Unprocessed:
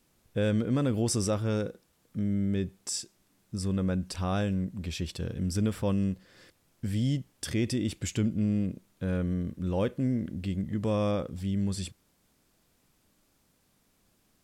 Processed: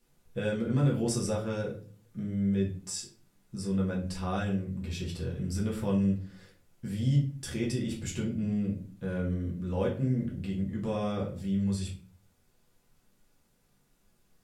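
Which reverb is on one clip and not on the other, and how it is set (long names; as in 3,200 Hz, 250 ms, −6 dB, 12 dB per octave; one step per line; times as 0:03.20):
rectangular room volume 31 cubic metres, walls mixed, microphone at 0.77 metres
level −7 dB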